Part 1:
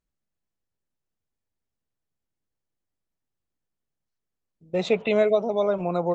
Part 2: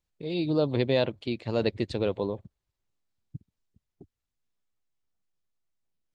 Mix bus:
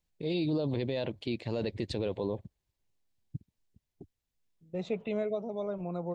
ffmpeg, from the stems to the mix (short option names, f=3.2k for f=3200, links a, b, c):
-filter_complex "[0:a]lowshelf=f=340:g=12,volume=-16dB[a];[1:a]equalizer=f=1.3k:w=3.9:g=-7.5,volume=1dB[b];[a][b]amix=inputs=2:normalize=0,alimiter=limit=-22.5dB:level=0:latency=1:release=26"